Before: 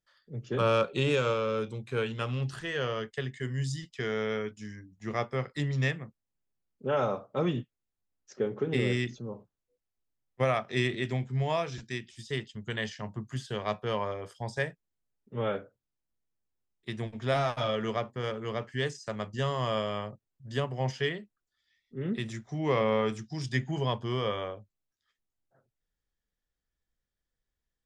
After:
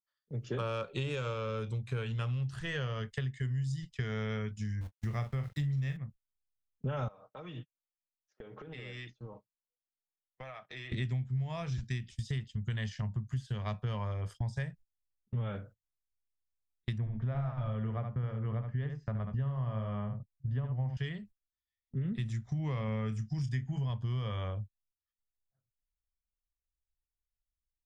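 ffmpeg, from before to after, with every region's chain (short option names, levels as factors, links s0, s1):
-filter_complex "[0:a]asettb=1/sr,asplit=3[s0][s1][s2];[s0]atrim=end=4.814[s3];[s1]atrim=start=4.81:end=5.97,asetpts=PTS-STARTPTS,afade=t=in:d=0.004:c=qsin,afade=t=out:st=1.156:d=0.004:c=qsin,lowshelf=f=93:g=4,aeval=exprs='val(0)*gte(abs(val(0)),0.00473)':c=same,asplit=2[s4][s5];[s5]adelay=43,volume=0.355[s6];[s4][s6]amix=inputs=2:normalize=0,atrim=end_sample=51156[s7];[s2]atrim=start=5.966[s8];[s3][s7]acrossfade=d=0.004:c1=hsin:c2=qsin[s9];[s9][s8]acrossfade=d=0.004:c1=qsin:c2=hsin,asettb=1/sr,asplit=3[s10][s11][s12];[s10]atrim=end=7.084[s13];[s11]atrim=start=7.08:end=10.92,asetpts=PTS-STARTPTS,afade=t=in:d=0.004:c=qsin,afade=t=out:st=3.836:d=0.004:c=qsin,acrossover=split=330 5300:gain=0.1 1 0.178[s14][s15][s16];[s14][s15][s16]amix=inputs=3:normalize=0,aecho=1:1:6.4:0.42,atrim=end_sample=169344,acompressor=threshold=0.00708:ratio=8:attack=3.2:release=140:knee=1:detection=peak[s17];[s12]atrim=start=10.916[s18];[s13][s17]acrossfade=d=0.004:c1=hsin:c2=qsin[s19];[s19][s18]acrossfade=d=0.004:c1=qsin:c2=hsin,asettb=1/sr,asplit=3[s20][s21][s22];[s20]atrim=end=16.984[s23];[s21]atrim=start=16.98:end=20.97,asetpts=PTS-STARTPTS,afade=t=in:d=0.004:c=qsin,afade=t=out:st=3.986:d=0.004:c=qsin,lowpass=1500,aecho=1:1:73:0.447,atrim=end_sample=175959[s24];[s22]atrim=start=20.966[s25];[s23][s24]acrossfade=d=0.004:c1=hsin:c2=qsin[s26];[s26][s25]acrossfade=d=0.004:c1=qsin:c2=hsin,asettb=1/sr,asplit=3[s27][s28][s29];[s27]atrim=end=22.854[s30];[s28]atrim=start=22.85:end=23.9,asetpts=PTS-STARTPTS,afade=t=in:d=0.004:c=qsin,afade=t=out:st=1.046:d=0.004:c=qsin,equalizer=f=3900:t=o:w=0.26:g=-10.5,asplit=2[s31][s32];[s32]adelay=28,volume=0.282[s33];[s31][s33]amix=inputs=2:normalize=0,atrim=end_sample=46305[s34];[s29]atrim=start=23.896[s35];[s30][s34]acrossfade=d=0.004:c1=hsin:c2=qsin[s36];[s36][s35]acrossfade=d=0.004:c1=qsin:c2=hsin,agate=range=0.0562:threshold=0.00316:ratio=16:detection=peak,asubboost=boost=11.5:cutoff=110,acompressor=threshold=0.02:ratio=6,volume=1.19"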